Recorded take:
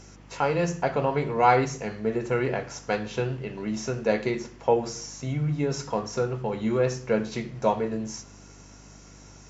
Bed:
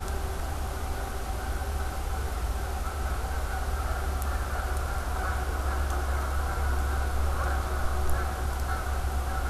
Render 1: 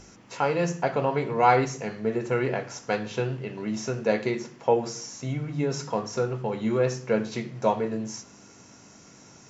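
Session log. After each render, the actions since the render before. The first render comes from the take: de-hum 50 Hz, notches 3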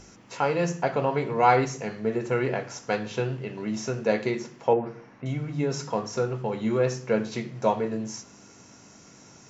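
4.73–5.26 LPF 2300 Hz 24 dB/oct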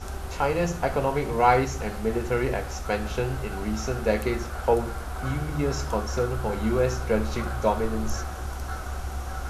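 add bed -3 dB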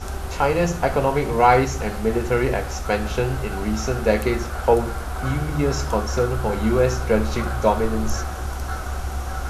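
gain +5 dB; limiter -3 dBFS, peak gain reduction 1.5 dB

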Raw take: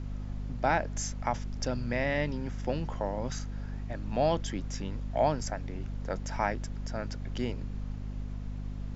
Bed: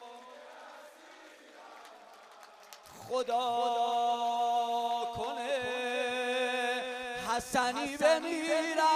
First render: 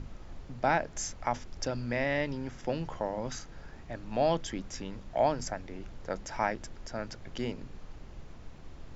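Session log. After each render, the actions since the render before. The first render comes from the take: notches 50/100/150/200/250 Hz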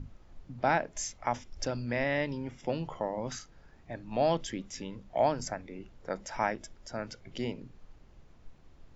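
noise print and reduce 10 dB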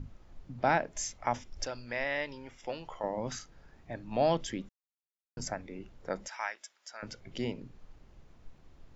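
1.64–3.04 bell 160 Hz -14.5 dB 2.5 oct; 4.69–5.37 mute; 6.28–7.03 HPF 1300 Hz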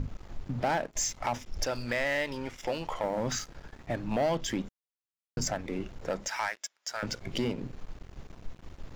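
compressor 2:1, threshold -40 dBFS, peak gain reduction 10 dB; sample leveller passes 3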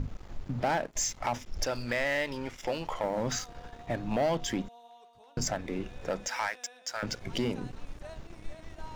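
add bed -21.5 dB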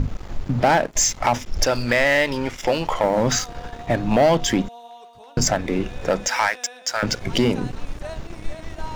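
gain +12 dB

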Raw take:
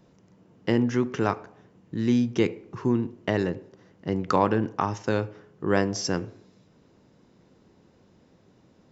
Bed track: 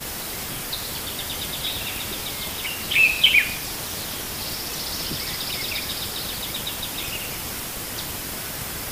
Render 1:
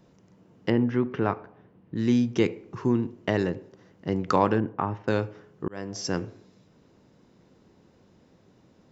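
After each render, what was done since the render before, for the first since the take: 0.7–1.96 air absorption 310 m; 4.6–5.08 air absorption 500 m; 5.68–6.2 fade in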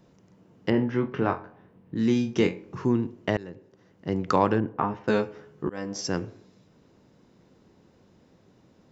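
0.7–2.85 flutter echo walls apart 3.8 m, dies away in 0.21 s; 3.37–4.18 fade in, from -19.5 dB; 4.74–6.01 doubler 14 ms -2.5 dB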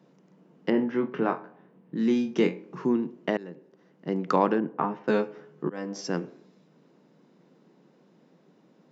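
elliptic high-pass 150 Hz, stop band 40 dB; high shelf 5700 Hz -9.5 dB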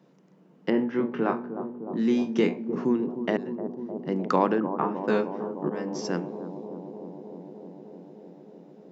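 analogue delay 0.305 s, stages 2048, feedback 81%, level -10 dB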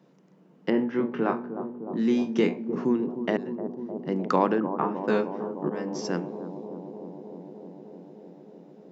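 nothing audible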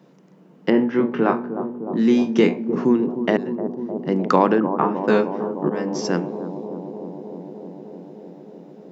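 gain +7 dB; limiter -3 dBFS, peak gain reduction 1.5 dB

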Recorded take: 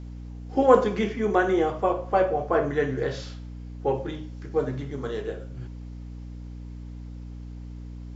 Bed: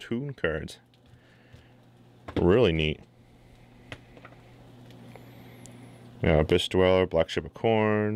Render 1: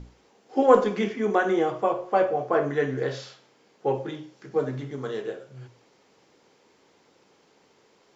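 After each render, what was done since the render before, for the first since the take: notches 60/120/180/240/300/360 Hz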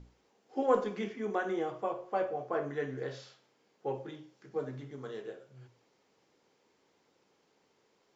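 gain -10.5 dB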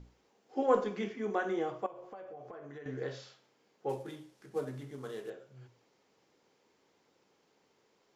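1.86–2.86 compressor 16:1, threshold -43 dBFS; 3.89–5.3 CVSD 64 kbps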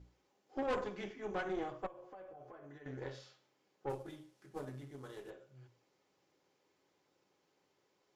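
notch comb 230 Hz; tube stage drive 31 dB, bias 0.75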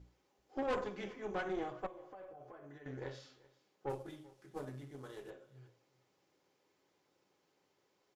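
echo 0.386 s -22.5 dB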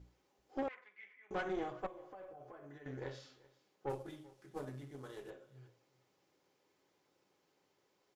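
0.68–1.31 band-pass 2100 Hz, Q 7.9

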